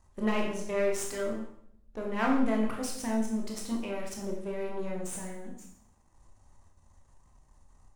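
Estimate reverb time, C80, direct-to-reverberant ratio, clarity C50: 0.70 s, 8.0 dB, -1.0 dB, 4.0 dB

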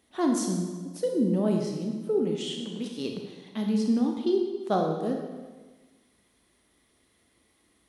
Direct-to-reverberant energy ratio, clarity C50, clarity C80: 2.0 dB, 3.5 dB, 5.5 dB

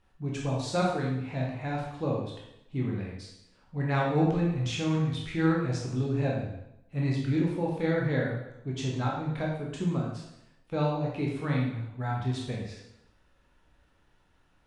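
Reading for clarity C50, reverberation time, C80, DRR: 2.0 dB, 0.85 s, 5.0 dB, -3.5 dB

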